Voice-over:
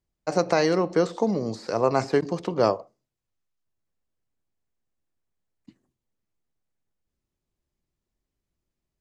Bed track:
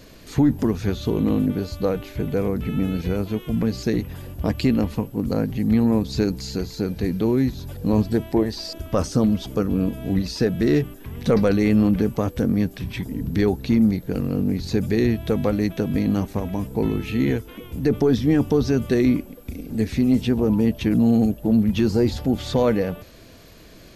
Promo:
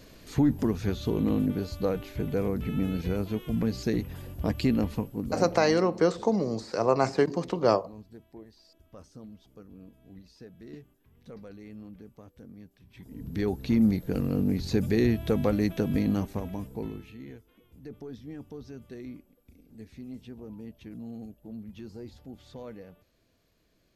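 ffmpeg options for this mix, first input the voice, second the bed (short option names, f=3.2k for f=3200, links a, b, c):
-filter_complex "[0:a]adelay=5050,volume=-1.5dB[a];[1:a]volume=18dB,afade=t=out:st=4.95:d=0.85:silence=0.0794328,afade=t=in:st=12.9:d=1.02:silence=0.0668344,afade=t=out:st=15.91:d=1.26:silence=0.105925[b];[a][b]amix=inputs=2:normalize=0"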